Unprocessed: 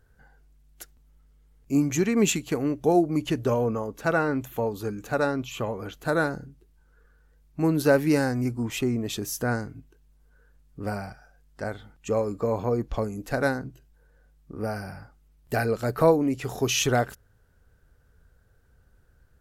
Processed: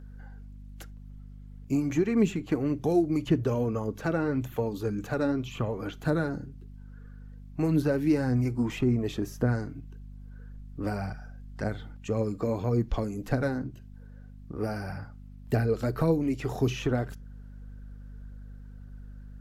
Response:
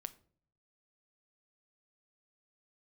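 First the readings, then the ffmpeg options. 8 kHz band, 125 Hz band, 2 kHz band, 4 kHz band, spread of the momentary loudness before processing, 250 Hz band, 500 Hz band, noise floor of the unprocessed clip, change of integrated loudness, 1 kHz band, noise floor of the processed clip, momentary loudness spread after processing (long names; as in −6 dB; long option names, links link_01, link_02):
−15.0 dB, +1.5 dB, −7.5 dB, −10.0 dB, 14 LU, −1.0 dB, −4.5 dB, −61 dBFS, −3.0 dB, −7.5 dB, −46 dBFS, 22 LU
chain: -filter_complex "[0:a]acrossover=split=390|2000[link_01][link_02][link_03];[link_01]acompressor=threshold=-26dB:ratio=4[link_04];[link_02]acompressor=threshold=-38dB:ratio=4[link_05];[link_03]acompressor=threshold=-48dB:ratio=4[link_06];[link_04][link_05][link_06]amix=inputs=3:normalize=0,aphaser=in_gain=1:out_gain=1:delay=3.9:decay=0.36:speed=1.8:type=triangular,aeval=exprs='val(0)+0.00501*(sin(2*PI*50*n/s)+sin(2*PI*2*50*n/s)/2+sin(2*PI*3*50*n/s)/3+sin(2*PI*4*50*n/s)/4+sin(2*PI*5*50*n/s)/5)':channel_layout=same,asplit=2[link_07][link_08];[1:a]atrim=start_sample=2205,atrim=end_sample=3969,lowpass=7100[link_09];[link_08][link_09]afir=irnorm=-1:irlink=0,volume=1.5dB[link_10];[link_07][link_10]amix=inputs=2:normalize=0,volume=-3dB"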